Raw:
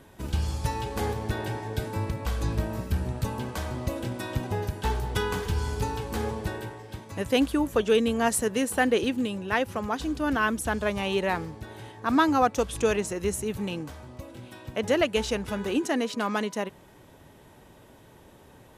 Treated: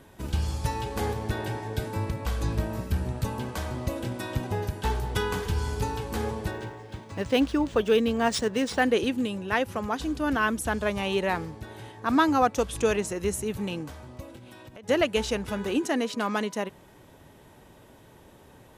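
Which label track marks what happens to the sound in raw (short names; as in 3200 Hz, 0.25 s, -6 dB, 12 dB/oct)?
6.510000	8.820000	decimation joined by straight lines rate divided by 3×
14.360000	14.890000	compressor 12:1, threshold -42 dBFS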